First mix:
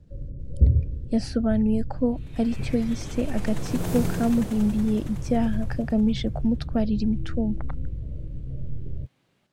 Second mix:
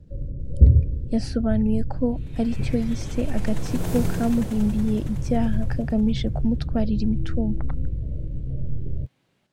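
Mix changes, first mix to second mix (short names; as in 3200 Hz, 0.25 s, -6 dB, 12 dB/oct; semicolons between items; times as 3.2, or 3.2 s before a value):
first sound +4.5 dB; master: add notch 1200 Hz, Q 25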